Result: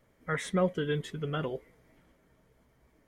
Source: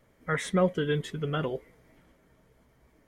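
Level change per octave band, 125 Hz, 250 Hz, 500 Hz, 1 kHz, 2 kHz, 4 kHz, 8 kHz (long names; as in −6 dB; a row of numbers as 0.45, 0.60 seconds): −3.0, −3.0, −3.0, −3.0, −3.0, −3.0, −3.0 decibels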